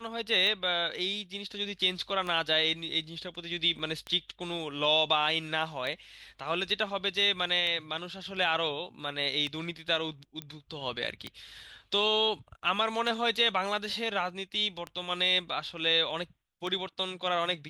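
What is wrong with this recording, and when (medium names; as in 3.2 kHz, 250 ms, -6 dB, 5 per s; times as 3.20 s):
tick 33 1/3 rpm -22 dBFS
3.79 s: dropout 3.9 ms
10.42 s: pop -22 dBFS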